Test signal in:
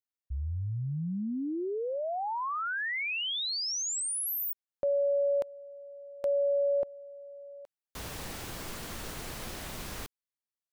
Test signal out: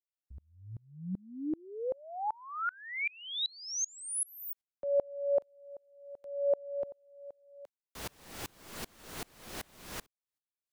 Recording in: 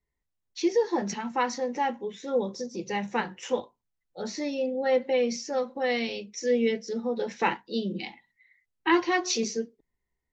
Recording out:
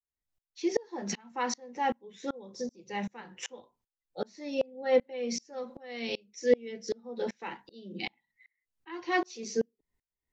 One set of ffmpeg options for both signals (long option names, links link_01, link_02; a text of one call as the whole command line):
ffmpeg -i in.wav -filter_complex "[0:a]acrossover=split=170|720[link_01][link_02][link_03];[link_01]acompressor=threshold=-52dB:ratio=6:release=20:knee=6:detection=rms[link_04];[link_04][link_02][link_03]amix=inputs=3:normalize=0,aeval=exprs='val(0)*pow(10,-31*if(lt(mod(-2.6*n/s,1),2*abs(-2.6)/1000),1-mod(-2.6*n/s,1)/(2*abs(-2.6)/1000),(mod(-2.6*n/s,1)-2*abs(-2.6)/1000)/(1-2*abs(-2.6)/1000))/20)':channel_layout=same,volume=4dB" out.wav